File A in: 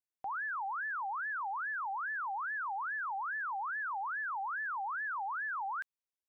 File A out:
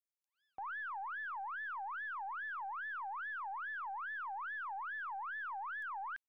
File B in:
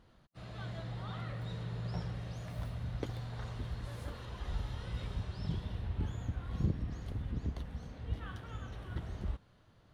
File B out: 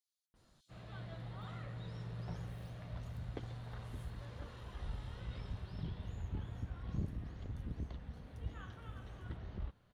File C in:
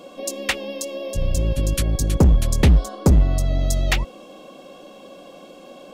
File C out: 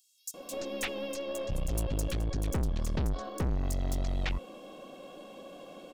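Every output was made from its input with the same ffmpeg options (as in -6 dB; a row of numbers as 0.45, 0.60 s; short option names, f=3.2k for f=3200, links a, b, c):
-filter_complex "[0:a]aeval=exprs='(tanh(15.8*val(0)+0.35)-tanh(0.35))/15.8':c=same,acrossover=split=5300[a][b];[a]adelay=340[c];[c][b]amix=inputs=2:normalize=0,volume=-4dB"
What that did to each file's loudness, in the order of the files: -5.0, -5.5, -13.5 LU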